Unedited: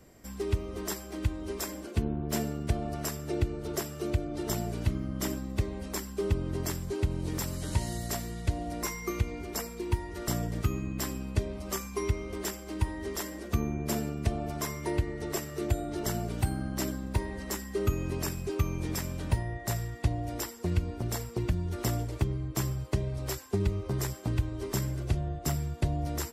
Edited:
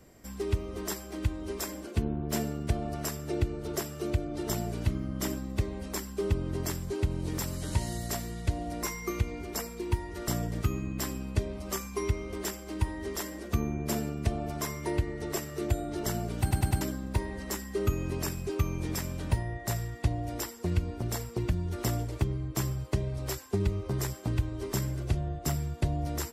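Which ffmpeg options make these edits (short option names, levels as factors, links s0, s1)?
-filter_complex "[0:a]asplit=5[s0][s1][s2][s3][s4];[s0]atrim=end=16.512[s5];[s1]atrim=start=16.408:end=16.512[s6];[s2]atrim=start=16.408:end=16.512[s7];[s3]atrim=start=16.408:end=16.512[s8];[s4]atrim=start=16.808[s9];[s5][s6]acrossfade=d=0.004:c1=hsin:c2=hsin[s10];[s10][s7]acrossfade=d=0.004:c1=hsin:c2=hsin[s11];[s11][s8]acrossfade=d=0.004:c1=hsin:c2=hsin[s12];[s12][s9]acrossfade=d=0.004:c1=hsin:c2=hsin"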